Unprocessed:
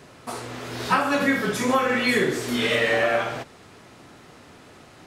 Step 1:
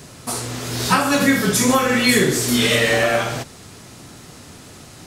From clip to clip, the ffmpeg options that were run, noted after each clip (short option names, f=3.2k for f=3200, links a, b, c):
-af "bass=f=250:g=8,treble=f=4k:g=13,volume=3dB"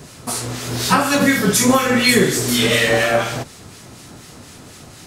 -filter_complex "[0:a]acrossover=split=1400[a][b];[a]aeval=exprs='val(0)*(1-0.5/2+0.5/2*cos(2*PI*4.1*n/s))':c=same[c];[b]aeval=exprs='val(0)*(1-0.5/2-0.5/2*cos(2*PI*4.1*n/s))':c=same[d];[c][d]amix=inputs=2:normalize=0,volume=3.5dB"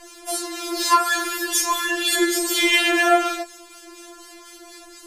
-af "afftfilt=real='re*4*eq(mod(b,16),0)':imag='im*4*eq(mod(b,16),0)':win_size=2048:overlap=0.75"